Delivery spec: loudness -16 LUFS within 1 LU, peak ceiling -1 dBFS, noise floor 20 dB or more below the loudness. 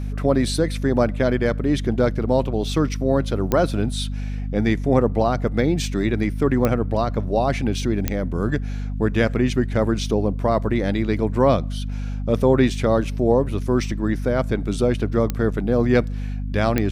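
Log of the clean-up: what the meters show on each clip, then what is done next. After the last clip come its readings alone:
clicks found 5; hum 50 Hz; highest harmonic 250 Hz; hum level -24 dBFS; loudness -21.5 LUFS; peak level -4.5 dBFS; loudness target -16.0 LUFS
-> de-click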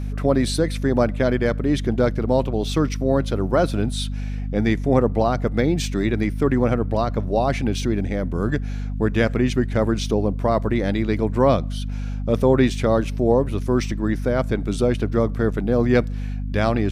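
clicks found 0; hum 50 Hz; highest harmonic 250 Hz; hum level -24 dBFS
-> de-hum 50 Hz, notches 5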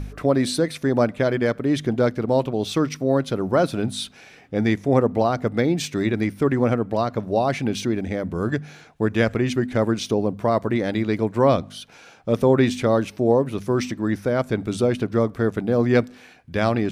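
hum not found; loudness -22.0 LUFS; peak level -4.5 dBFS; loudness target -16.0 LUFS
-> trim +6 dB; peak limiter -1 dBFS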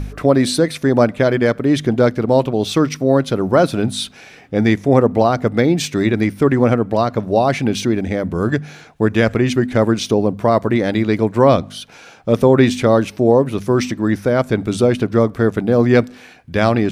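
loudness -16.0 LUFS; peak level -1.0 dBFS; noise floor -42 dBFS

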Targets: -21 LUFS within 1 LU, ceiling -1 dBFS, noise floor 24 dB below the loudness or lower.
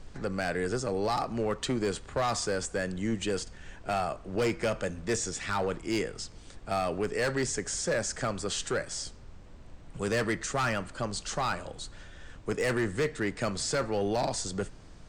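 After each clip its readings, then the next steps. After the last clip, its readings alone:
clipped samples 1.5%; clipping level -22.5 dBFS; noise floor -49 dBFS; noise floor target -56 dBFS; loudness -31.5 LUFS; peak level -22.5 dBFS; loudness target -21.0 LUFS
-> clip repair -22.5 dBFS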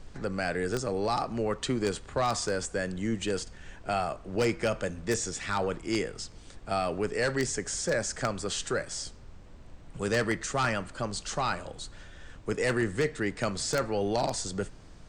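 clipped samples 0.0%; noise floor -49 dBFS; noise floor target -55 dBFS
-> noise print and reduce 6 dB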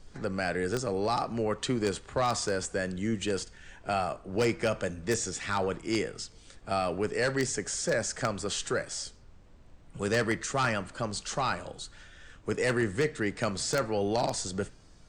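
noise floor -54 dBFS; noise floor target -55 dBFS
-> noise print and reduce 6 dB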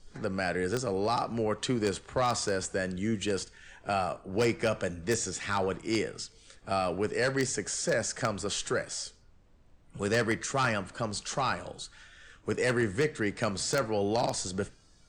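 noise floor -59 dBFS; loudness -31.0 LUFS; peak level -13.5 dBFS; loudness target -21.0 LUFS
-> trim +10 dB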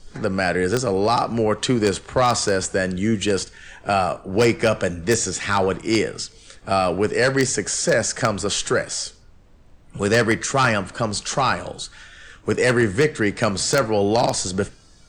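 loudness -21.0 LUFS; peak level -3.5 dBFS; noise floor -49 dBFS

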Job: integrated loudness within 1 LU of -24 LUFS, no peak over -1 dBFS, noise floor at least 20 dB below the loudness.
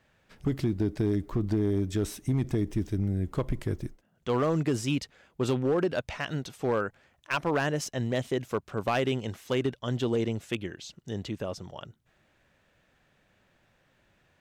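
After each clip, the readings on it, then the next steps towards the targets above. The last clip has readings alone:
clipped samples 1.0%; clipping level -20.0 dBFS; loudness -30.5 LUFS; peak level -20.0 dBFS; loudness target -24.0 LUFS
-> clip repair -20 dBFS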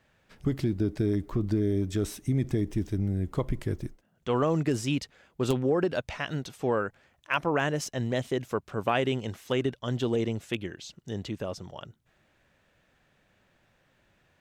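clipped samples 0.0%; loudness -30.0 LUFS; peak level -11.0 dBFS; loudness target -24.0 LUFS
-> trim +6 dB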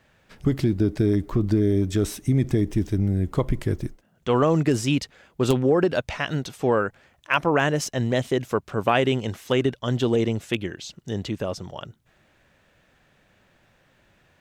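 loudness -24.0 LUFS; peak level -5.0 dBFS; noise floor -63 dBFS

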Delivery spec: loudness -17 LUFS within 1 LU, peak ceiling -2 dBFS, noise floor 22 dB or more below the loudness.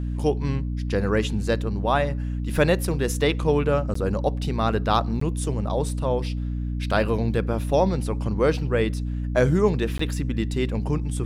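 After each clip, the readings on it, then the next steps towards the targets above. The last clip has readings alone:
dropouts 3; longest dropout 14 ms; hum 60 Hz; highest harmonic 300 Hz; hum level -25 dBFS; loudness -24.0 LUFS; peak level -5.0 dBFS; loudness target -17.0 LUFS
-> interpolate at 3.94/5.20/9.98 s, 14 ms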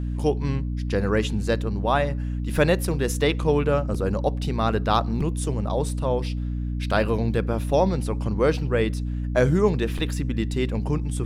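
dropouts 0; hum 60 Hz; highest harmonic 300 Hz; hum level -25 dBFS
-> de-hum 60 Hz, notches 5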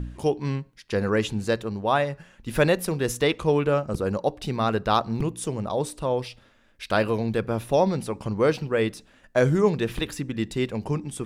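hum not found; loudness -25.5 LUFS; peak level -6.0 dBFS; loudness target -17.0 LUFS
-> trim +8.5 dB; peak limiter -2 dBFS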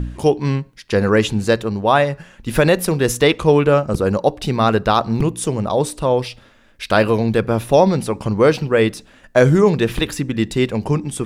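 loudness -17.5 LUFS; peak level -2.0 dBFS; noise floor -49 dBFS

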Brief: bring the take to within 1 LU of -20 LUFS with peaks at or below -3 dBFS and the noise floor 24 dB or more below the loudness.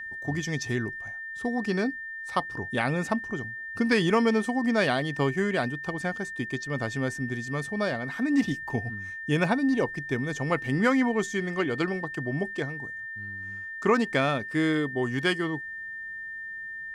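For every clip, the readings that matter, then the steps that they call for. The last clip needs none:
steady tone 1.8 kHz; tone level -35 dBFS; loudness -28.0 LUFS; peak level -9.5 dBFS; loudness target -20.0 LUFS
-> band-stop 1.8 kHz, Q 30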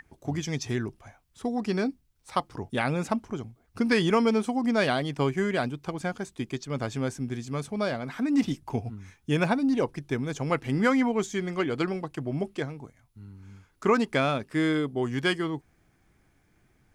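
steady tone not found; loudness -28.5 LUFS; peak level -10.0 dBFS; loudness target -20.0 LUFS
-> trim +8.5 dB; peak limiter -3 dBFS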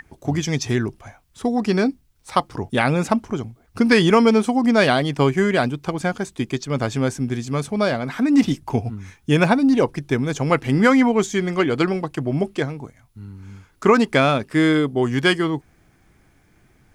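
loudness -20.0 LUFS; peak level -3.0 dBFS; noise floor -58 dBFS

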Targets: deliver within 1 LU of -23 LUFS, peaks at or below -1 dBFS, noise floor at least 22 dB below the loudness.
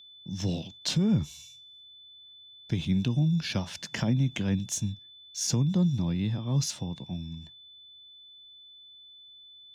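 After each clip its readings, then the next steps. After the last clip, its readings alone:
steady tone 3.5 kHz; tone level -49 dBFS; loudness -29.0 LUFS; peak level -17.0 dBFS; loudness target -23.0 LUFS
-> band-stop 3.5 kHz, Q 30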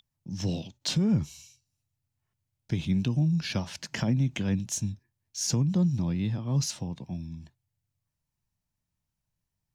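steady tone not found; loudness -29.0 LUFS; peak level -16.5 dBFS; loudness target -23.0 LUFS
-> trim +6 dB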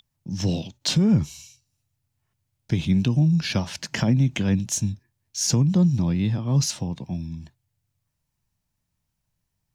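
loudness -23.0 LUFS; peak level -10.5 dBFS; noise floor -78 dBFS

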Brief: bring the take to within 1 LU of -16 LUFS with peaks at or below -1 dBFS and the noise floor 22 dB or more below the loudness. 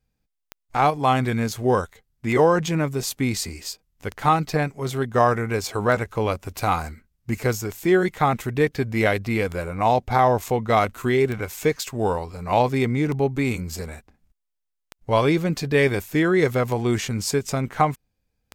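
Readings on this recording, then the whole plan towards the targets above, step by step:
clicks found 11; loudness -22.5 LUFS; peak level -4.0 dBFS; loudness target -16.0 LUFS
-> de-click; trim +6.5 dB; peak limiter -1 dBFS

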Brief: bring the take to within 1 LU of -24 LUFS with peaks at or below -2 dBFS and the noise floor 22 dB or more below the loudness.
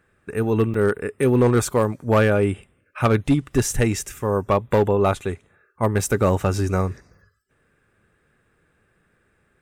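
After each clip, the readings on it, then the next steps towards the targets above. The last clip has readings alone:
clipped samples 0.6%; clipping level -10.5 dBFS; dropouts 1; longest dropout 3.7 ms; loudness -21.0 LUFS; peak level -10.5 dBFS; loudness target -24.0 LUFS
-> clip repair -10.5 dBFS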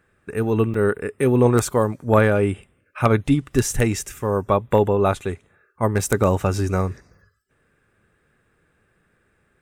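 clipped samples 0.0%; dropouts 1; longest dropout 3.7 ms
-> interpolate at 0.74 s, 3.7 ms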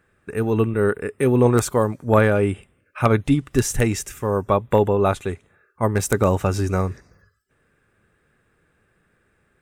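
dropouts 0; loudness -20.5 LUFS; peak level -1.5 dBFS; loudness target -24.0 LUFS
-> trim -3.5 dB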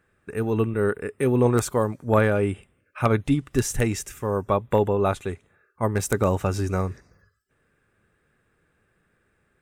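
loudness -24.0 LUFS; peak level -5.0 dBFS; noise floor -69 dBFS

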